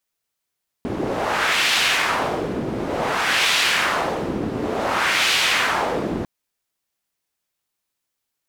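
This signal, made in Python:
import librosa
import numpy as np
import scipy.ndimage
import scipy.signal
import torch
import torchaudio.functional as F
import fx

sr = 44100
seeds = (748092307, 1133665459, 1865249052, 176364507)

y = fx.wind(sr, seeds[0], length_s=5.4, low_hz=280.0, high_hz=2900.0, q=1.3, gusts=3, swing_db=7)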